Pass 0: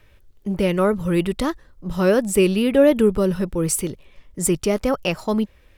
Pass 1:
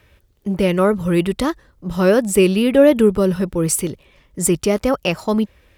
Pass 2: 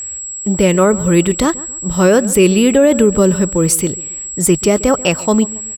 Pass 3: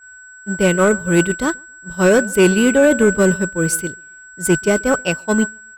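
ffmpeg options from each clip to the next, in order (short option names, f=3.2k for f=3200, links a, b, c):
-af "highpass=42,volume=3dB"
-filter_complex "[0:a]aeval=exprs='val(0)+0.0398*sin(2*PI*7700*n/s)':c=same,asplit=2[a][b];[b]adelay=138,lowpass=f=2.1k:p=1,volume=-19dB,asplit=2[c][d];[d]adelay=138,lowpass=f=2.1k:p=1,volume=0.37,asplit=2[e][f];[f]adelay=138,lowpass=f=2.1k:p=1,volume=0.37[g];[a][c][e][g]amix=inputs=4:normalize=0,alimiter=level_in=6dB:limit=-1dB:release=50:level=0:latency=1,volume=-1dB"
-af "aeval=exprs='val(0)+0.126*sin(2*PI*1500*n/s)':c=same,agate=range=-33dB:threshold=-5dB:ratio=3:detection=peak,acontrast=63,volume=-3.5dB"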